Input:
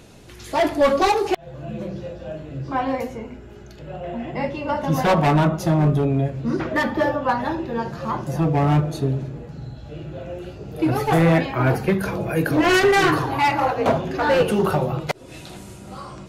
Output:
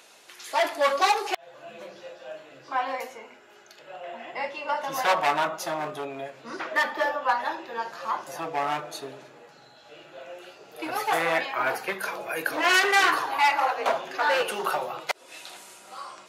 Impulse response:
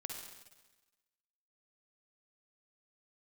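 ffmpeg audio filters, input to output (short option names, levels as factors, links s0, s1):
-af "highpass=820"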